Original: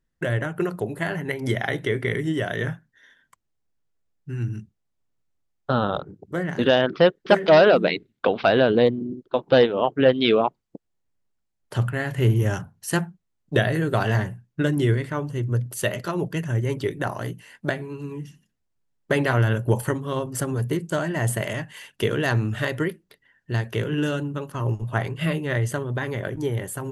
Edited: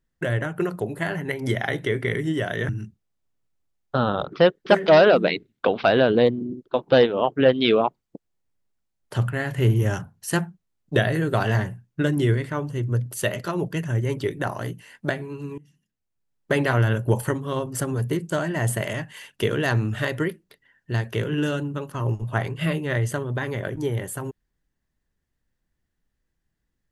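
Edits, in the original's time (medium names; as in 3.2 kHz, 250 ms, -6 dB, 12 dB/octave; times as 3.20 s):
2.69–4.44 s: delete
6.07–6.92 s: delete
18.18–19.15 s: fade in, from -21 dB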